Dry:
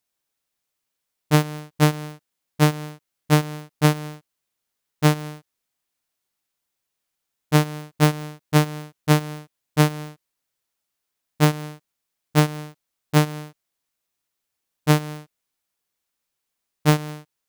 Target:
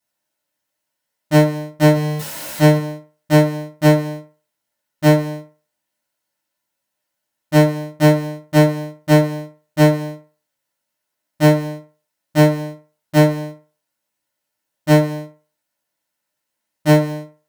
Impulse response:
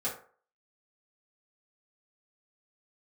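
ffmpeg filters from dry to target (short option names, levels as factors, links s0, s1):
-filter_complex "[0:a]asettb=1/sr,asplit=3[s0][s1][s2];[s0]atrim=end=1.944[s3];[s1]atrim=start=1.94:end=2.77,asetpts=PTS-STARTPTS,afade=t=in:d=0.004:c=qsin,afade=t=out:st=0.826:d=0.004:c=qsin,aeval=exprs='val(0)+0.5*0.0501*sgn(val(0))':c=same[s4];[s2]atrim=start=2.766[s5];[s3][s4]acrossfade=d=0.004:c1=hsin:c2=qsin[s6];[s6][s5]acrossfade=d=0.004:c1=qsin:c2=hsin[s7];[1:a]atrim=start_sample=2205,asetrate=52920,aresample=44100[s8];[s7][s8]afir=irnorm=-1:irlink=0,asplit=2[s9][s10];[s10]asoftclip=type=hard:threshold=0.2,volume=0.668[s11];[s9][s11]amix=inputs=2:normalize=0,volume=0.708"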